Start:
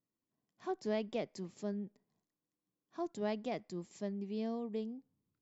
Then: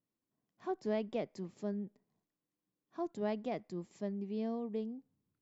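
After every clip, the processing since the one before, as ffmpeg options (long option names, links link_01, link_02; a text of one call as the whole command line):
ffmpeg -i in.wav -af "highshelf=frequency=3100:gain=-8.5,volume=1dB" out.wav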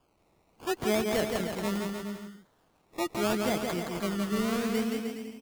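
ffmpeg -i in.wav -af "aexciter=amount=5:drive=7:freq=3200,acrusher=samples=22:mix=1:aa=0.000001:lfo=1:lforange=13.2:lforate=0.76,aecho=1:1:170|306|414.8|501.8|571.5:0.631|0.398|0.251|0.158|0.1,volume=6.5dB" out.wav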